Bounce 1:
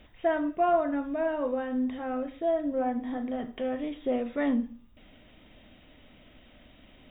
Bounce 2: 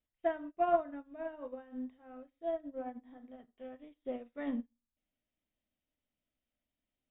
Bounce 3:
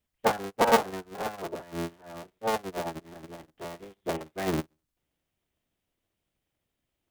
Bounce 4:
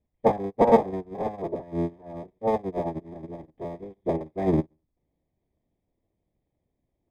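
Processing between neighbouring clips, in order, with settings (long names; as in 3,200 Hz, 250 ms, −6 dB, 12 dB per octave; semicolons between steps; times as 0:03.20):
expander for the loud parts 2.5 to 1, over −43 dBFS; level −2.5 dB
sub-harmonics by changed cycles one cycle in 3, inverted; level +7.5 dB
moving average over 31 samples; level +7.5 dB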